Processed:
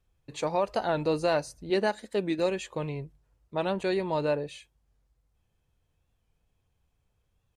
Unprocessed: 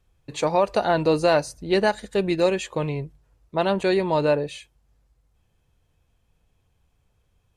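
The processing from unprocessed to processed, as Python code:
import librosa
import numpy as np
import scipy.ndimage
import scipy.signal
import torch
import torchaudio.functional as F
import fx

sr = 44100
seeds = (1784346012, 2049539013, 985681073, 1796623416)

y = fx.low_shelf_res(x, sr, hz=160.0, db=-11.0, q=1.5, at=(1.7, 2.39))
y = fx.record_warp(y, sr, rpm=45.0, depth_cents=100.0)
y = F.gain(torch.from_numpy(y), -7.0).numpy()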